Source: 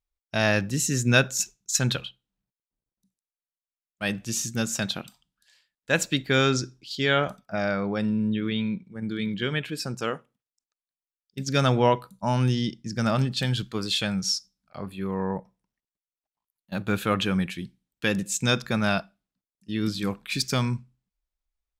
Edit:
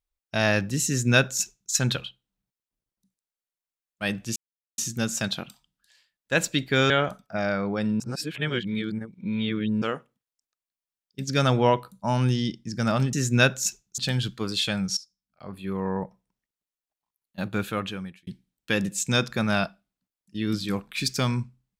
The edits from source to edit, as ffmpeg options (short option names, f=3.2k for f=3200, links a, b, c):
-filter_complex "[0:a]asplit=9[a][b][c][d][e][f][g][h][i];[a]atrim=end=4.36,asetpts=PTS-STARTPTS,afade=t=out:st=4.356:d=0.004:c=hsin,apad=pad_dur=0.42[j];[b]atrim=start=4.36:end=6.482,asetpts=PTS-STARTPTS,afade=t=in:d=0.004:c=hsin[k];[c]atrim=start=7.088:end=8.192[l];[d]atrim=start=8.188:end=10.012,asetpts=PTS-STARTPTS,areverse[m];[e]atrim=start=10.008:end=13.322[n];[f]atrim=start=0.868:end=1.722[o];[g]atrim=start=13.318:end=14.31,asetpts=PTS-STARTPTS,afade=t=out:st=0.988:d=0.004:c=hsin:silence=0.141254[p];[h]atrim=start=14.31:end=17.61,asetpts=PTS-STARTPTS,afade=t=in:d=0.67:c=qua:silence=0.141254,afade=t=out:st=2.44:d=0.86[q];[i]atrim=start=17.61,asetpts=PTS-STARTPTS,afade=t=in:d=0.004:c=hsin[r];[j][k]concat=n=2:v=0:a=1[s];[s][l]acrossfade=d=0.004:c1=hsin:c2=hsin[t];[t][m]acrossfade=d=0.004:c1=hsin:c2=hsin[u];[u][n]acrossfade=d=0.004:c1=hsin:c2=hsin[v];[v][o]acrossfade=d=0.004:c1=hsin:c2=hsin[w];[p][q][r]concat=n=3:v=0:a=1[x];[w][x]acrossfade=d=0.004:c1=hsin:c2=hsin"